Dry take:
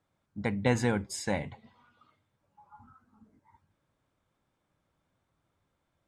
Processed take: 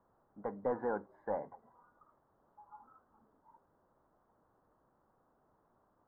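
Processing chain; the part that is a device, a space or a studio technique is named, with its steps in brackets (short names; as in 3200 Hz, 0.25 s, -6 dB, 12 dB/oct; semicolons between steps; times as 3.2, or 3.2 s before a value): drive-through speaker (BPF 480–2900 Hz; bell 1700 Hz +5 dB; hard clip -25 dBFS, distortion -10 dB; white noise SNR 18 dB); inverse Chebyshev low-pass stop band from 2300 Hz, stop band 40 dB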